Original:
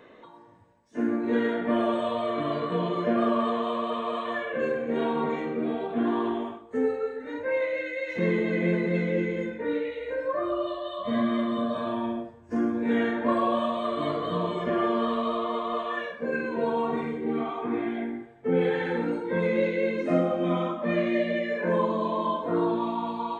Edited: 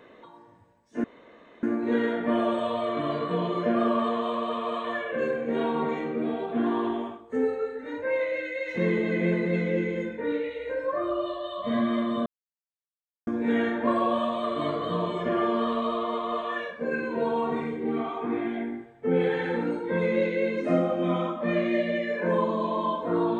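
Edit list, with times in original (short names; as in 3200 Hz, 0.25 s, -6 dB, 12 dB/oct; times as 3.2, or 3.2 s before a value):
1.04 insert room tone 0.59 s
11.67–12.68 mute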